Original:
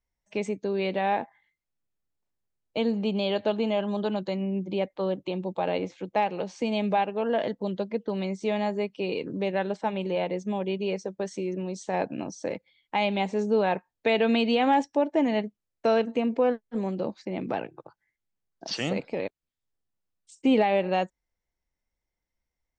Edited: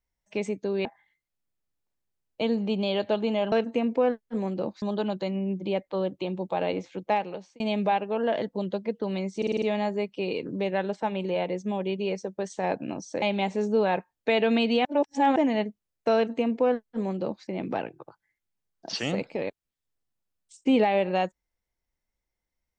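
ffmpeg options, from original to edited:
-filter_complex "[0:a]asplit=14[s0][s1][s2][s3][s4][s5][s6][s7][s8][s9][s10][s11][s12][s13];[s0]atrim=end=0.852[s14];[s1]atrim=start=1.208:end=3.882[s15];[s2]atrim=start=15.928:end=17.232[s16];[s3]atrim=start=3.878:end=6.66,asetpts=PTS-STARTPTS,afade=t=out:st=2.312:d=0.47[s17];[s4]atrim=start=6.66:end=8.482,asetpts=PTS-STARTPTS,afade=t=in:d=0.004:c=hsin[s18];[s5]atrim=start=8.428:end=8.482[s19];[s6]atrim=start=8.428:end=8.482[s20];[s7]atrim=start=8.428:end=8.482[s21];[s8]atrim=start=8.428:end=8.482[s22];[s9]atrim=start=8.428:end=11.312[s23];[s10]atrim=start=11.798:end=12.522[s24];[s11]atrim=start=12.998:end=14.632[s25];[s12]atrim=start=14.628:end=15.142,asetpts=PTS-STARTPTS,areverse[s26];[s13]atrim=start=15.138[s27];[s14][s15]acrossfade=d=0.004:c1=hsin:c2=hsin[s28];[s28][s16]acrossfade=d=0.004:c1=hsin:c2=hsin[s29];[s17][s18]concat=n=2:v=0:a=1[s30];[s29][s30]acrossfade=d=0.004:c1=hsin:c2=hsin[s31];[s31][s19]acrossfade=d=0.004:c1=hsin:c2=hsin[s32];[s32][s20]acrossfade=d=0.004:c1=hsin:c2=hsin[s33];[s33][s21]acrossfade=d=0.004:c1=hsin:c2=hsin[s34];[s34][s22]acrossfade=d=0.004:c1=hsin:c2=hsin[s35];[s35][s23]acrossfade=d=0.004:c1=hsin:c2=hsin[s36];[s36][s24]acrossfade=d=0.004:c1=hsin:c2=hsin[s37];[s37][s25]acrossfade=d=0.004:c1=hsin:c2=hsin[s38];[s38][s26]acrossfade=d=0.004:c1=hsin:c2=hsin[s39];[s39][s27]acrossfade=d=0.004:c1=hsin:c2=hsin"

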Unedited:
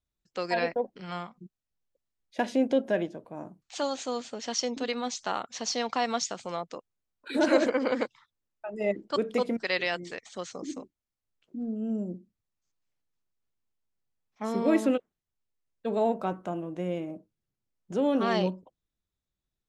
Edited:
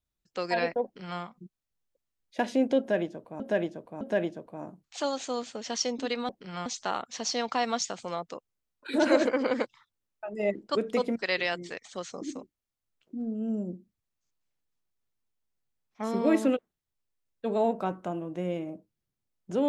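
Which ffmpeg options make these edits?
-filter_complex "[0:a]asplit=5[s0][s1][s2][s3][s4];[s0]atrim=end=3.402[s5];[s1]atrim=start=2.788:end=3.402[s6];[s2]atrim=start=2.788:end=5.072[s7];[s3]atrim=start=0.838:end=1.212[s8];[s4]atrim=start=5.068[s9];[s5][s6]acrossfade=d=0.004:c1=hsin:c2=hsin[s10];[s10][s7]acrossfade=d=0.004:c1=hsin:c2=hsin[s11];[s11][s8]acrossfade=d=0.004:c1=hsin:c2=hsin[s12];[s12][s9]acrossfade=d=0.004:c1=hsin:c2=hsin"

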